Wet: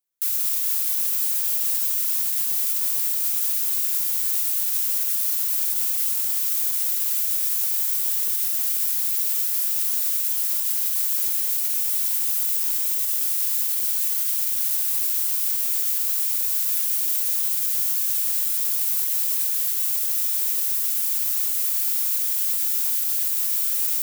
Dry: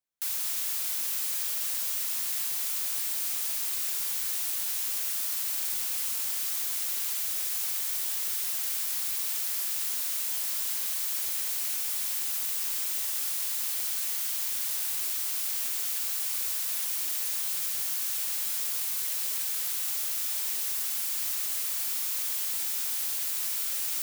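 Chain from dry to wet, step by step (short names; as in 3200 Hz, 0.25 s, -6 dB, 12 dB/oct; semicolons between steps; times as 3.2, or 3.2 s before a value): high shelf 7600 Hz +10.5 dB; limiter -12.5 dBFS, peak gain reduction 4.5 dB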